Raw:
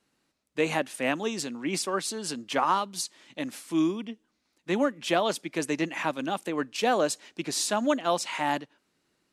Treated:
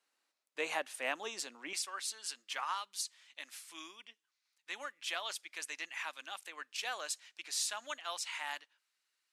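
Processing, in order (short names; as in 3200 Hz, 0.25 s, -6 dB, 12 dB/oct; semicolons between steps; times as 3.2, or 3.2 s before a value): HPF 660 Hz 12 dB/oct, from 1.73 s 1500 Hz; gain -6 dB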